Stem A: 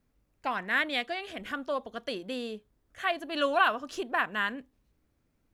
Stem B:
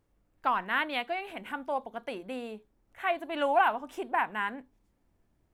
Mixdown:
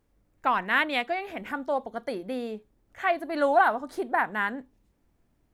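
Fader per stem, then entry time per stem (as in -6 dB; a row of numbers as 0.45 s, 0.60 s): -3.5 dB, +1.0 dB; 0.00 s, 0.00 s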